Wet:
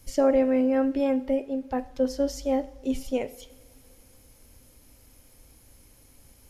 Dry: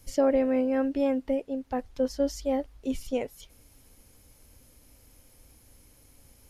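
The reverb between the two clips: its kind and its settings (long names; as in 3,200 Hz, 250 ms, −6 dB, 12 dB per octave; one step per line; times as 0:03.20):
coupled-rooms reverb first 0.54 s, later 3.6 s, from −20 dB, DRR 12 dB
level +1.5 dB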